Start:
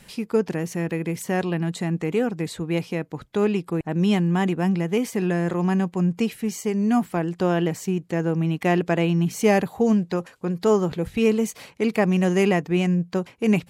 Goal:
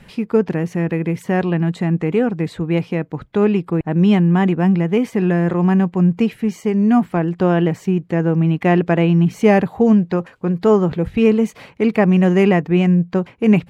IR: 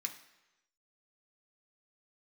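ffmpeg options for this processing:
-af "bass=f=250:g=3,treble=f=4000:g=-14,volume=1.78"

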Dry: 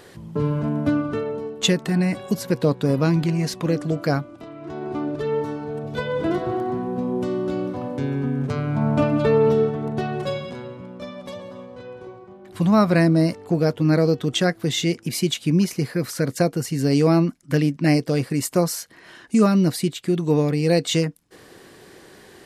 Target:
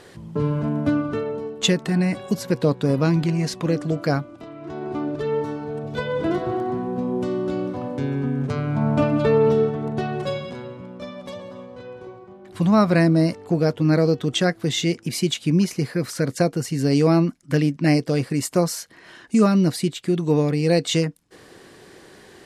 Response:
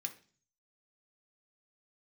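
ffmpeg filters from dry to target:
-af "lowpass=11000"

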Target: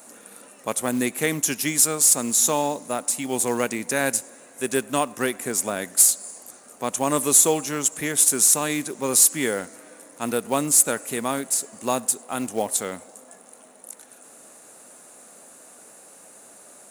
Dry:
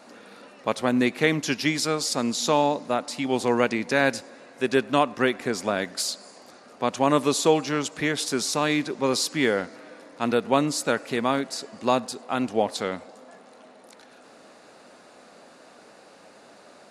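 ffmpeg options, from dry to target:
-af "aexciter=amount=10.1:drive=6.9:freq=6900,acrusher=bits=5:mode=log:mix=0:aa=0.000001,volume=0.75"

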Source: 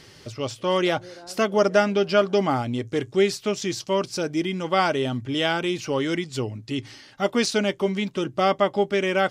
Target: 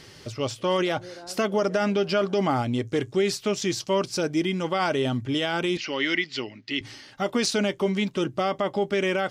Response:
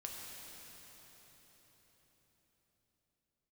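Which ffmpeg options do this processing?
-filter_complex "[0:a]alimiter=limit=0.168:level=0:latency=1:release=36,asettb=1/sr,asplit=3[s0][s1][s2];[s0]atrim=end=5.774[s3];[s1]atrim=start=5.77:end=6.81,asetpts=PTS-STARTPTS,afade=t=in:d=0.004:c=qsin,afade=t=out:st=1.036:d=0.004:c=qsin,highpass=310,equalizer=f=470:t=q:w=4:g=-10,equalizer=f=740:t=q:w=4:g=-6,equalizer=f=1100:t=q:w=4:g=-4,equalizer=f=2000:t=q:w=4:g=10,equalizer=f=2900:t=q:w=4:g=5,equalizer=f=4700:t=q:w=4:g=4,lowpass=f=5400:w=0.5412,lowpass=f=5400:w=1.3066[s4];[s2]atrim=start=6.806[s5];[s3][s4]acrossfade=d=0.004:c1=hsin:c2=qsin[s6];[s6][s5]acrossfade=d=0.004:c1=qsin:c2=hsin,volume=1.12"

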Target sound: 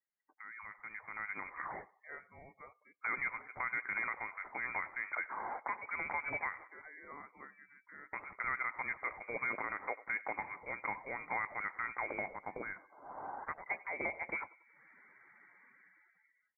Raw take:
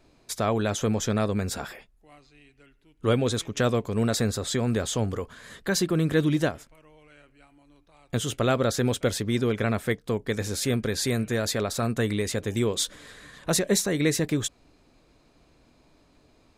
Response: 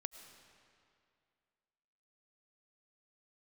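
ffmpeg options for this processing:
-af "asetnsamples=n=441:p=0,asendcmd='12.28 highpass f 1400;13.66 highpass f 510',highpass=640,aemphasis=mode=production:type=bsi,acompressor=threshold=0.0126:ratio=4,lowpass=f=2200:t=q:w=0.5098,lowpass=f=2200:t=q:w=0.6013,lowpass=f=2200:t=q:w=0.9,lowpass=f=2200:t=q:w=2.563,afreqshift=-2600,aecho=1:1:93|186|279|372|465:0.0794|0.0477|0.0286|0.0172|0.0103,alimiter=level_in=3.16:limit=0.0631:level=0:latency=1:release=54,volume=0.316,dynaudnorm=f=140:g=17:m=5.01,afftdn=nr=28:nf=-54,volume=0.473"

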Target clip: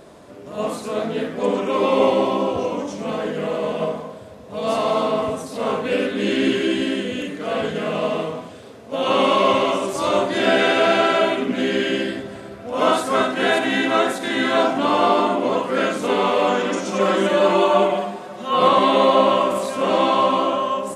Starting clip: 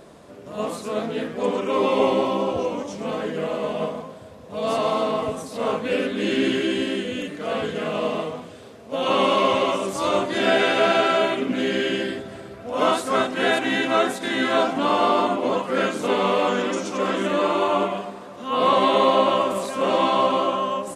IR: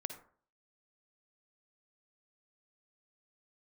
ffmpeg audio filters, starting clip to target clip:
-filter_complex "[0:a]asettb=1/sr,asplit=3[s0][s1][s2];[s0]atrim=end=16.884[s3];[s1]atrim=start=16.88:end=18.68,asetpts=PTS-STARTPTS,afade=t=in:d=0.004:c=qsin,afade=t=out:st=1.796:d=0.004:c=qsin,aecho=1:1:5.4:0.9,atrim=end_sample=79380[s4];[s2]atrim=start=18.676[s5];[s3][s4]acrossfade=d=0.004:c1=hsin:c2=qsin[s6];[s6][s5]acrossfade=d=0.004:c1=qsin:c2=hsin[s7];[1:a]atrim=start_sample=2205,afade=t=out:st=0.15:d=0.01,atrim=end_sample=7056[s8];[s7][s8]afir=irnorm=-1:irlink=0,volume=1.5"

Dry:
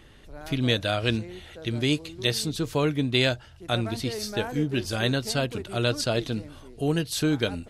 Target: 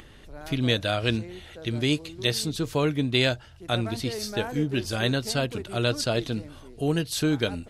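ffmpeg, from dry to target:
-af "acompressor=mode=upward:threshold=0.00631:ratio=2.5"

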